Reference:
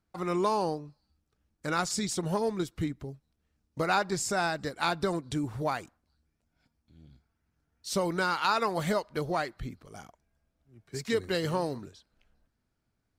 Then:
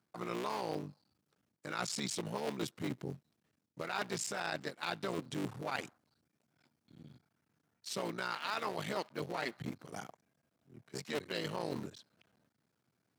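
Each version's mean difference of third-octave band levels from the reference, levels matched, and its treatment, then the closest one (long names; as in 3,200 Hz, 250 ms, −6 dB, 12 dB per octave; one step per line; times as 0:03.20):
7.0 dB: sub-harmonics by changed cycles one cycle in 3, muted
high-pass filter 120 Hz 24 dB per octave
dynamic equaliser 2,800 Hz, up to +7 dB, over −48 dBFS, Q 0.93
reversed playback
downward compressor 6 to 1, threshold −38 dBFS, peak gain reduction 17 dB
reversed playback
level +3 dB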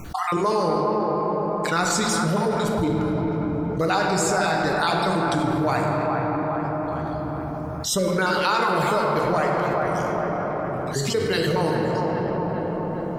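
9.5 dB: time-frequency cells dropped at random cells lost 27%
on a send: delay with a band-pass on its return 409 ms, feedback 40%, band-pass 850 Hz, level −6.5 dB
on the sum: rectangular room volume 160 cubic metres, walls hard, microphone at 0.41 metres
envelope flattener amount 70%
level +3 dB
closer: first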